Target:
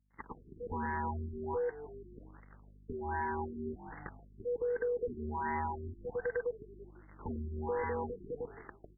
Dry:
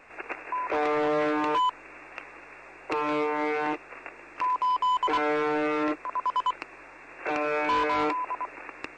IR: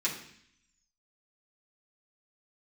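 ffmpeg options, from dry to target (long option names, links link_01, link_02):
-filter_complex "[0:a]afftfilt=real='real(if(lt(b,1008),b+24*(1-2*mod(floor(b/24),2)),b),0)':imag='imag(if(lt(b,1008),b+24*(1-2*mod(floor(b/24),2)),b),0)':win_size=2048:overlap=0.75,aresample=8000,aeval=exprs='sgn(val(0))*max(abs(val(0))-0.00596,0)':channel_layout=same,aresample=44100,aeval=exprs='val(0)+0.00224*(sin(2*PI*50*n/s)+sin(2*PI*2*50*n/s)/2+sin(2*PI*3*50*n/s)/3+sin(2*PI*4*50*n/s)/4+sin(2*PI*5*50*n/s)/5)':channel_layout=same,dynaudnorm=framelen=280:gausssize=9:maxgain=5.5dB,asplit=2[link_01][link_02];[link_02]asplit=4[link_03][link_04][link_05][link_06];[link_03]adelay=166,afreqshift=-43,volume=-18.5dB[link_07];[link_04]adelay=332,afreqshift=-86,volume=-24.9dB[link_08];[link_05]adelay=498,afreqshift=-129,volume=-31.3dB[link_09];[link_06]adelay=664,afreqshift=-172,volume=-37.6dB[link_10];[link_07][link_08][link_09][link_10]amix=inputs=4:normalize=0[link_11];[link_01][link_11]amix=inputs=2:normalize=0,acompressor=threshold=-30dB:ratio=2.5,agate=range=-33dB:threshold=-43dB:ratio=3:detection=peak,afftfilt=real='re*lt(b*sr/1024,410*pow(2200/410,0.5+0.5*sin(2*PI*1.3*pts/sr)))':imag='im*lt(b*sr/1024,410*pow(2200/410,0.5+0.5*sin(2*PI*1.3*pts/sr)))':win_size=1024:overlap=0.75,volume=-5dB"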